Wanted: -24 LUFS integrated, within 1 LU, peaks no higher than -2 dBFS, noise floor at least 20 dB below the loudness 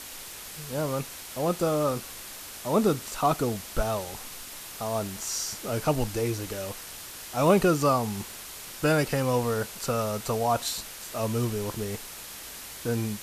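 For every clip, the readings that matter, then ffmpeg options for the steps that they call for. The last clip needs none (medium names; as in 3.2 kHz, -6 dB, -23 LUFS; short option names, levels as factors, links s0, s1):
noise floor -42 dBFS; noise floor target -49 dBFS; loudness -29.0 LUFS; peak level -9.0 dBFS; loudness target -24.0 LUFS
-> -af "afftdn=nr=7:nf=-42"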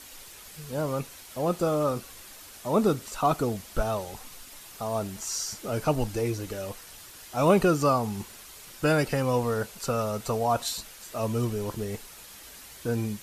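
noise floor -47 dBFS; noise floor target -49 dBFS
-> -af "afftdn=nr=6:nf=-47"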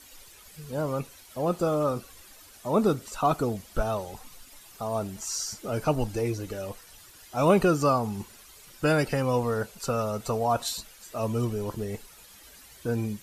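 noise floor -52 dBFS; loudness -28.5 LUFS; peak level -9.5 dBFS; loudness target -24.0 LUFS
-> -af "volume=1.68"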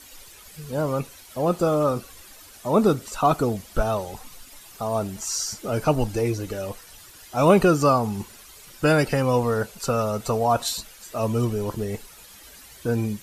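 loudness -24.0 LUFS; peak level -5.0 dBFS; noise floor -47 dBFS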